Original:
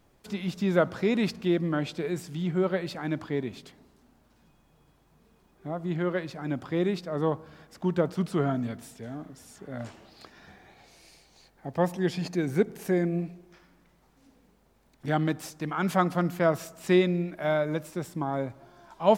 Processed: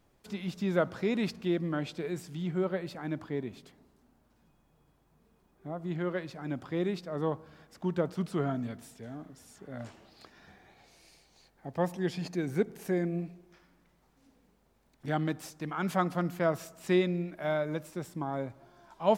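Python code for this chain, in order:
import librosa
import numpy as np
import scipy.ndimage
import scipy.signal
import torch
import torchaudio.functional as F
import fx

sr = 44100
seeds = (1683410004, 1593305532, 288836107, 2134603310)

y = fx.peak_eq(x, sr, hz=4000.0, db=-3.5, octaves=2.4, at=(2.64, 5.82))
y = y * librosa.db_to_amplitude(-4.5)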